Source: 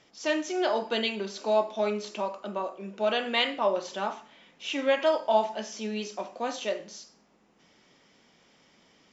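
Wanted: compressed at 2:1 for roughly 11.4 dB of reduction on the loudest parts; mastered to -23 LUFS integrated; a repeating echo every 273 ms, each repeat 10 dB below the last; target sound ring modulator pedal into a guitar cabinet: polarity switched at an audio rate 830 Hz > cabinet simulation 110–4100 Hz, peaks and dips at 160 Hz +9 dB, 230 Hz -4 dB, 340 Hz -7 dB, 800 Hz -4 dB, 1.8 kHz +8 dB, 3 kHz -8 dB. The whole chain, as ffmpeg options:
-af "acompressor=threshold=0.01:ratio=2,aecho=1:1:273|546|819|1092:0.316|0.101|0.0324|0.0104,aeval=exprs='val(0)*sgn(sin(2*PI*830*n/s))':c=same,highpass=110,equalizer=f=160:t=q:w=4:g=9,equalizer=f=230:t=q:w=4:g=-4,equalizer=f=340:t=q:w=4:g=-7,equalizer=f=800:t=q:w=4:g=-4,equalizer=f=1800:t=q:w=4:g=8,equalizer=f=3000:t=q:w=4:g=-8,lowpass=f=4100:w=0.5412,lowpass=f=4100:w=1.3066,volume=4.47"

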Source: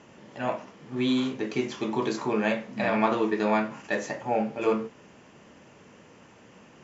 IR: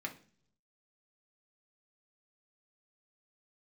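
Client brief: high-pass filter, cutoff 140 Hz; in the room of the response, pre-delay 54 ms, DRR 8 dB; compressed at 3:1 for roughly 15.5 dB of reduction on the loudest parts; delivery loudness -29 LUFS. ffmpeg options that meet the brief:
-filter_complex "[0:a]highpass=140,acompressor=threshold=0.00891:ratio=3,asplit=2[s0][s1];[1:a]atrim=start_sample=2205,adelay=54[s2];[s1][s2]afir=irnorm=-1:irlink=0,volume=0.355[s3];[s0][s3]amix=inputs=2:normalize=0,volume=3.98"

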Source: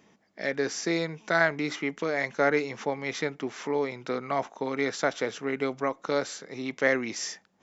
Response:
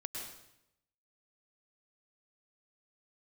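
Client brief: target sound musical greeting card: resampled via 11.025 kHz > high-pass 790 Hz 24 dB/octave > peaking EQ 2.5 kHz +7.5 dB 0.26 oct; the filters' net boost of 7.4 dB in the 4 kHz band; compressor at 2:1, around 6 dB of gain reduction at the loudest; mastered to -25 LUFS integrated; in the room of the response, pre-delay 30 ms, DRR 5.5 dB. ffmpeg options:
-filter_complex "[0:a]equalizer=f=4000:t=o:g=8.5,acompressor=threshold=0.0398:ratio=2,asplit=2[s0][s1];[1:a]atrim=start_sample=2205,adelay=30[s2];[s1][s2]afir=irnorm=-1:irlink=0,volume=0.562[s3];[s0][s3]amix=inputs=2:normalize=0,aresample=11025,aresample=44100,highpass=f=790:w=0.5412,highpass=f=790:w=1.3066,equalizer=f=2500:t=o:w=0.26:g=7.5,volume=2.24"

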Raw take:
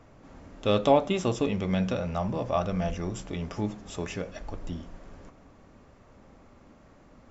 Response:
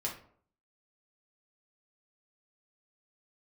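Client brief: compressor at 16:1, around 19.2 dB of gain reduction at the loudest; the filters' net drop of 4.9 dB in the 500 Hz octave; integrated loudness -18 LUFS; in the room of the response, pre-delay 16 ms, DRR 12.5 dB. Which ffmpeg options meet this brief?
-filter_complex "[0:a]equalizer=f=500:t=o:g=-6,acompressor=threshold=0.0141:ratio=16,asplit=2[s0][s1];[1:a]atrim=start_sample=2205,adelay=16[s2];[s1][s2]afir=irnorm=-1:irlink=0,volume=0.178[s3];[s0][s3]amix=inputs=2:normalize=0,volume=17.8"

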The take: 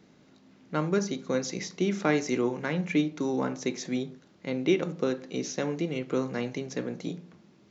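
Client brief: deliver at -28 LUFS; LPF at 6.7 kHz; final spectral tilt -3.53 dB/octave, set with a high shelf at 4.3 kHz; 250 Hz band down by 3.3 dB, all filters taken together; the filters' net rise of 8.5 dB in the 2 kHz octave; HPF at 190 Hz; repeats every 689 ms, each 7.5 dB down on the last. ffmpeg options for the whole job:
-af "highpass=190,lowpass=6700,equalizer=f=250:t=o:g=-3,equalizer=f=2000:t=o:g=9,highshelf=f=4300:g=6.5,aecho=1:1:689|1378|2067|2756|3445:0.422|0.177|0.0744|0.0312|0.0131,volume=1.06"

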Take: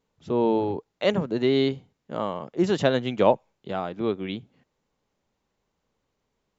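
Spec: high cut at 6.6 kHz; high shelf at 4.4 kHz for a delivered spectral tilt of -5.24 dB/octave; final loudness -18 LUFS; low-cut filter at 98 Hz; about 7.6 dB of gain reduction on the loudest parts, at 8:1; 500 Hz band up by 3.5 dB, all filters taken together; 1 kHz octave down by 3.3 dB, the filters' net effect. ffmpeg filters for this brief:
-af "highpass=98,lowpass=6600,equalizer=f=500:t=o:g=6,equalizer=f=1000:t=o:g=-7,highshelf=f=4400:g=4.5,acompressor=threshold=0.1:ratio=8,volume=2.99"

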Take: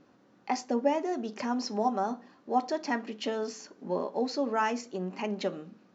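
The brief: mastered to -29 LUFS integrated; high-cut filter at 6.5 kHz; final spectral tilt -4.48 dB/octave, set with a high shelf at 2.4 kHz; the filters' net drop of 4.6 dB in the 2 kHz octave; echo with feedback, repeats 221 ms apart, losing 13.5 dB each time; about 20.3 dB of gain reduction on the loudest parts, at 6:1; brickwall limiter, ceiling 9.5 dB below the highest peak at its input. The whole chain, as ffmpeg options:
-af "lowpass=6500,equalizer=f=2000:t=o:g=-3.5,highshelf=f=2400:g=-5,acompressor=threshold=0.00562:ratio=6,alimiter=level_in=5.96:limit=0.0631:level=0:latency=1,volume=0.168,aecho=1:1:221|442:0.211|0.0444,volume=11.2"

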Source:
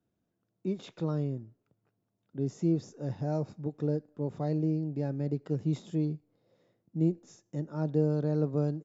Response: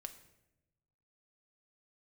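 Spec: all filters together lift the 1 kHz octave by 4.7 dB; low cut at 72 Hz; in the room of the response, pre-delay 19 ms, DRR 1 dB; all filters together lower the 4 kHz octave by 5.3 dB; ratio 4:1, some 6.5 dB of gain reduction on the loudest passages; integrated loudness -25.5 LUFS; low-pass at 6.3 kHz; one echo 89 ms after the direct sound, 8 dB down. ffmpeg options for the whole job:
-filter_complex "[0:a]highpass=72,lowpass=6300,equalizer=f=1000:t=o:g=7,equalizer=f=4000:t=o:g=-6,acompressor=threshold=0.0355:ratio=4,aecho=1:1:89:0.398,asplit=2[s0][s1];[1:a]atrim=start_sample=2205,adelay=19[s2];[s1][s2]afir=irnorm=-1:irlink=0,volume=1.5[s3];[s0][s3]amix=inputs=2:normalize=0,volume=2.11"

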